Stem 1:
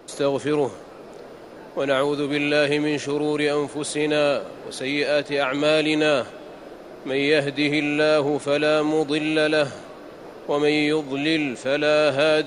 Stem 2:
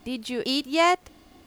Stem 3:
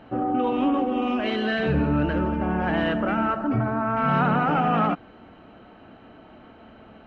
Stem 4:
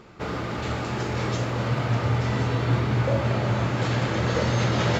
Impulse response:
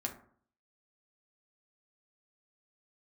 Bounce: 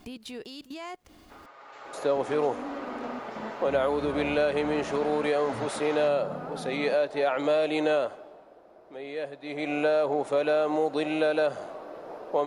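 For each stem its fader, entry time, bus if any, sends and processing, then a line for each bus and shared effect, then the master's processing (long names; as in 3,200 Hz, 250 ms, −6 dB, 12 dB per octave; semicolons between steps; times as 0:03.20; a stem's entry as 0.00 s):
0:07.95 −10.5 dB → 0:08.50 −23.5 dB → 0:09.42 −23.5 dB → 0:09.74 −10.5 dB, 1.85 s, no bus, no send, parametric band 740 Hz +13.5 dB 1.9 octaves
+2.0 dB, 0.00 s, bus A, no send, downward compressor 2 to 1, threshold −31 dBFS, peak gain reduction 8.5 dB
−17.0 dB, 2.00 s, bus A, no send, tilt shelving filter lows +7.5 dB, about 1,500 Hz
−18.0 dB, 1.10 s, no bus, no send, high-pass filter 570 Hz 12 dB per octave; parametric band 930 Hz +10.5 dB 2.4 octaves; comb filter 7.3 ms, depth 56%; automatic ducking −10 dB, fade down 1.65 s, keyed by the second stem
bus A: 0.0 dB, output level in coarse steps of 18 dB; brickwall limiter −31 dBFS, peak gain reduction 7.5 dB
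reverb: not used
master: downward compressor, threshold −21 dBFS, peak gain reduction 7 dB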